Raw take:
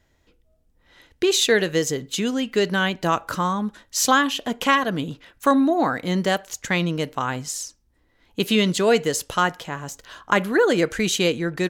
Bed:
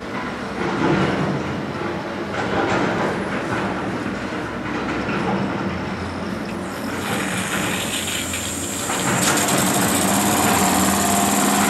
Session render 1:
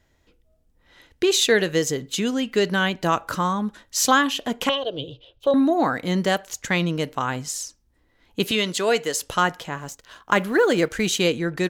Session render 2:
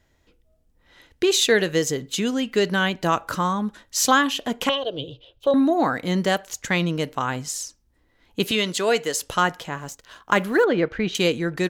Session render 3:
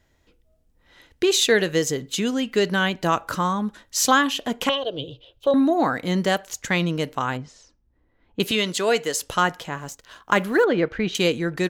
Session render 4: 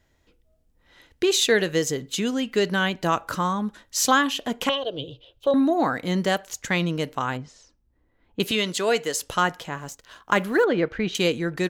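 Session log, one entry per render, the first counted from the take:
4.69–5.54 EQ curve 130 Hz 0 dB, 200 Hz -23 dB, 340 Hz -3 dB, 540 Hz +4 dB, 830 Hz -9 dB, 1900 Hz -26 dB, 3100 Hz +6 dB, 7300 Hz -20 dB; 8.51–9.23 HPF 480 Hz 6 dB/oct; 9.78–11.23 G.711 law mismatch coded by A
10.64–11.15 air absorption 300 m
7.37–8.4 tape spacing loss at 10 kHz 34 dB
gain -1.5 dB

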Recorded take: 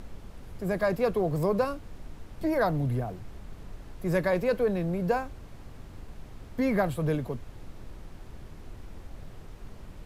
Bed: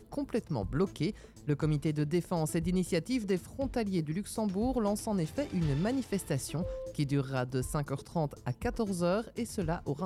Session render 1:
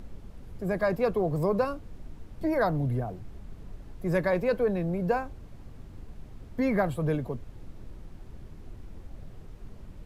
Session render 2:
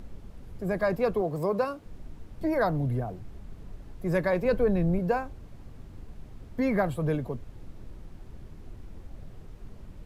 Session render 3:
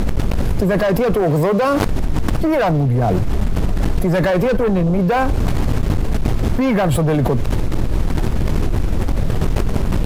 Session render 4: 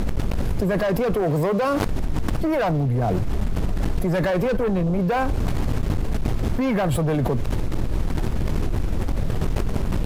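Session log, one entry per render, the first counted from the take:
denoiser 6 dB, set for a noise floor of -47 dBFS
1.21–1.86 HPF 210 Hz 6 dB/oct; 4.45–4.99 low shelf 150 Hz +11 dB
sample leveller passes 3; fast leveller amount 100%
gain -5.5 dB

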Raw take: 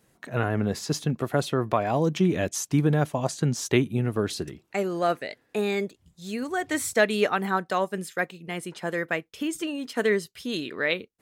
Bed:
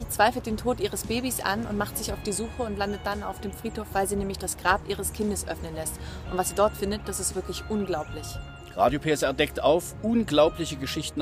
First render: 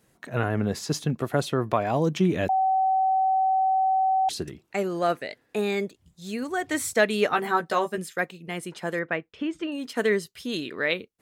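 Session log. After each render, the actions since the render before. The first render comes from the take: 2.49–4.29 bleep 762 Hz -19 dBFS; 7.29–7.98 doubler 13 ms -3 dB; 8.99–9.72 LPF 2800 Hz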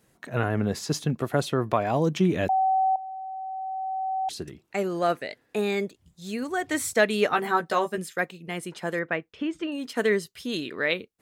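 2.96–4.85 fade in quadratic, from -14.5 dB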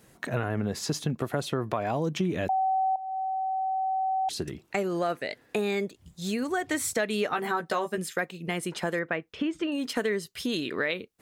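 in parallel at +1.5 dB: limiter -16 dBFS, peak gain reduction 7.5 dB; on the sum: compressor 3:1, threshold -28 dBFS, peak gain reduction 12.5 dB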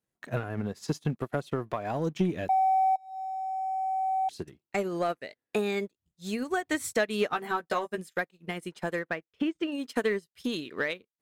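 sample leveller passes 1; upward expander 2.5:1, over -40 dBFS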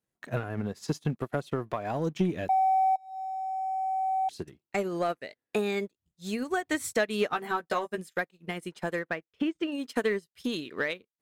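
nothing audible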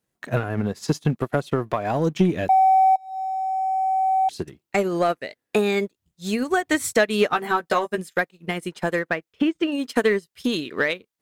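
gain +8 dB

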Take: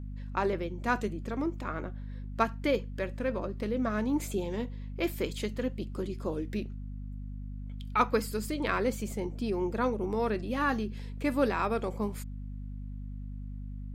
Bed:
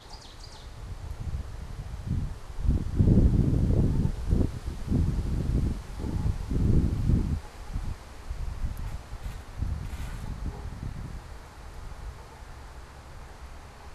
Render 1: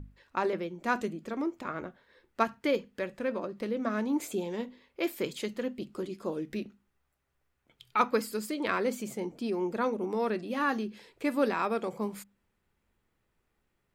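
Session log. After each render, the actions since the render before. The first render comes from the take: notches 50/100/150/200/250 Hz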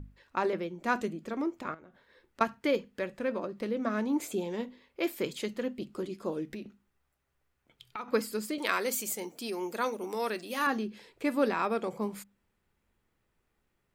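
1.74–2.41 compressor 12:1, threshold -49 dBFS; 6.46–8.08 compressor, threshold -36 dBFS; 8.58–10.67 RIAA curve recording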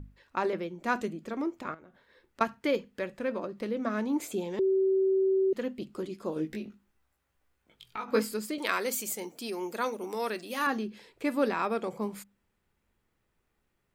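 4.59–5.53 bleep 383 Hz -22 dBFS; 6.34–8.34 doubler 19 ms -2 dB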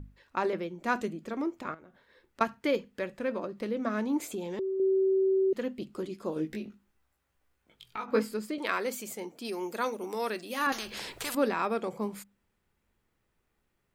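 4.27–4.8 compressor 3:1, threshold -32 dBFS; 8.06–9.45 high shelf 4100 Hz -9 dB; 10.72–11.35 spectral compressor 4:1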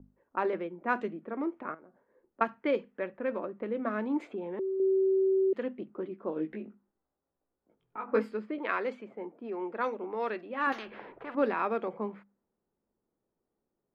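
three-band isolator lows -16 dB, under 190 Hz, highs -22 dB, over 3000 Hz; low-pass opened by the level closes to 640 Hz, open at -24.5 dBFS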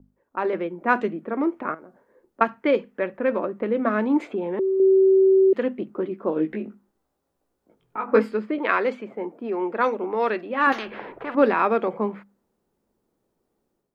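AGC gain up to 10 dB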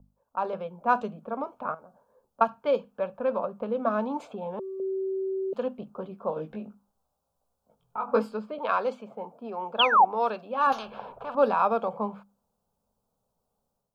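9.79–10.05 painted sound fall 700–3500 Hz -15 dBFS; fixed phaser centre 810 Hz, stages 4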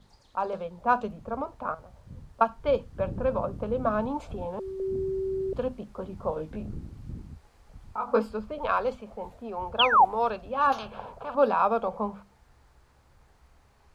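add bed -15.5 dB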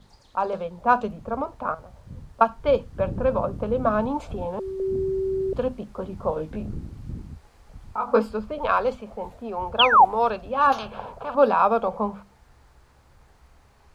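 gain +4.5 dB

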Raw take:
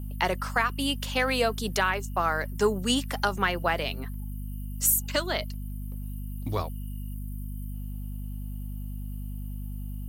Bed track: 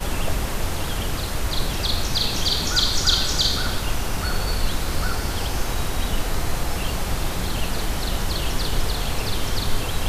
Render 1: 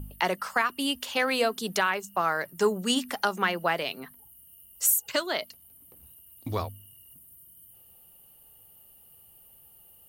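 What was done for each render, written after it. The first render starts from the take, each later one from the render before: de-hum 50 Hz, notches 5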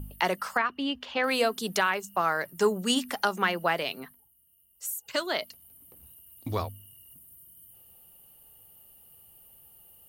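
0.57–1.24 air absorption 220 m; 4.02–5.22 dip -12 dB, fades 0.32 s quadratic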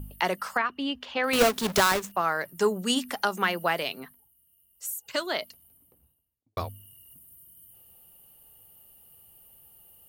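1.33–2.12 half-waves squared off; 3.32–3.88 high shelf 5900 Hz +6 dB; 5.34–6.57 studio fade out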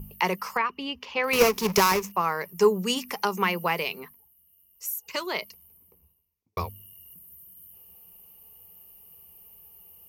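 ripple EQ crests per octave 0.81, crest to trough 10 dB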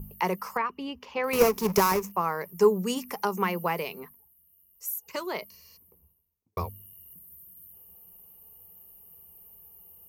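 5.53–5.74 spectral repair 330–9300 Hz before; bell 3300 Hz -9 dB 2 oct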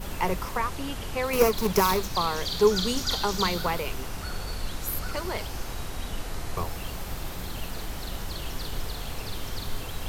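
add bed track -10 dB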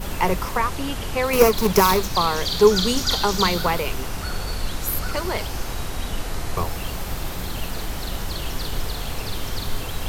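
gain +6 dB

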